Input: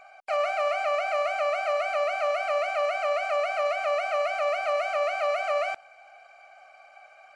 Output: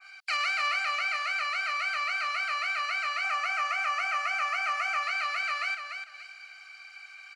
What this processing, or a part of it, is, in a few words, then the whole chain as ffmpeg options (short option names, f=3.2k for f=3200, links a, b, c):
headphones lying on a table: -filter_complex "[0:a]asettb=1/sr,asplit=3[a][b][c];[a]atrim=end=3.244[d];[b]atrim=start=3.24:end=5.03,asetpts=PTS-STARTPTS,afade=t=in:d=0.004:c=qsin,afade=t=out:st=1.786:d=0.004:c=qsin,equalizer=f=800:t=o:w=0.33:g=10,equalizer=f=1.25k:t=o:w=0.33:g=3,equalizer=f=4k:t=o:w=0.33:g=-9,equalizer=f=6.3k:t=o:w=0.33:g=3[e];[c]atrim=start=5.026[f];[d][e]acrossfade=d=0.004:c1=hsin:c2=qsin[g];[g][f]acrossfade=d=0.004:c1=qsin:c2=hsin,highpass=f=1.5k:w=0.5412,highpass=f=1.5k:w=1.3066,equalizer=f=4.5k:t=o:w=0.45:g=9,aecho=1:1:293|586|879:0.422|0.0801|0.0152,adynamicequalizer=threshold=0.00398:dfrequency=2000:dqfactor=0.7:tfrequency=2000:tqfactor=0.7:attack=5:release=100:ratio=0.375:range=4:mode=cutabove:tftype=highshelf,volume=7.5dB"